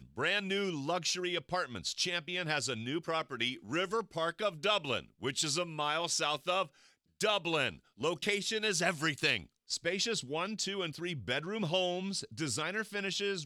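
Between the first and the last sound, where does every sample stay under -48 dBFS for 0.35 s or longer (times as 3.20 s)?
6.67–7.20 s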